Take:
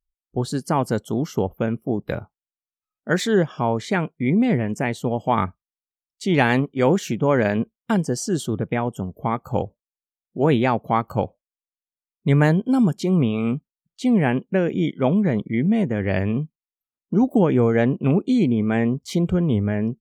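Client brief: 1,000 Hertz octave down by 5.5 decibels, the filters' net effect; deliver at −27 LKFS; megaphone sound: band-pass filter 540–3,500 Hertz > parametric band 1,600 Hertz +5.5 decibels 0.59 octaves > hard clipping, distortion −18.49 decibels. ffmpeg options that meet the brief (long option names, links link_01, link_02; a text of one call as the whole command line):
ffmpeg -i in.wav -af "highpass=540,lowpass=3500,equalizer=frequency=1000:width_type=o:gain=-7.5,equalizer=frequency=1600:width_type=o:width=0.59:gain=5.5,asoftclip=type=hard:threshold=-15dB,volume=3dB" out.wav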